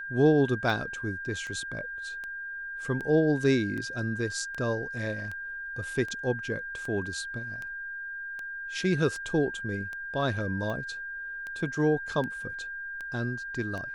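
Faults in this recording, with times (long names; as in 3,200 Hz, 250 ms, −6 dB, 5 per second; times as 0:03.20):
scratch tick 78 rpm
whistle 1,600 Hz −35 dBFS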